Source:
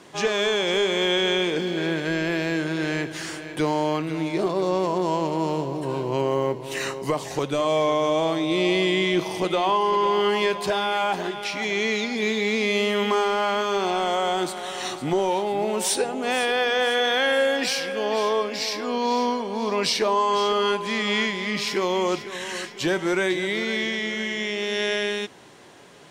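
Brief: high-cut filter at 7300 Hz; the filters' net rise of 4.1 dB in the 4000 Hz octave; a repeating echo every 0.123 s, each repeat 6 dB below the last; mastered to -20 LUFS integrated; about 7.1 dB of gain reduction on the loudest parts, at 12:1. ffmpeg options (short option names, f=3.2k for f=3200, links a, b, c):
-af "lowpass=7.3k,equalizer=f=4k:t=o:g=5.5,acompressor=threshold=-24dB:ratio=12,aecho=1:1:123|246|369|492|615|738:0.501|0.251|0.125|0.0626|0.0313|0.0157,volume=6.5dB"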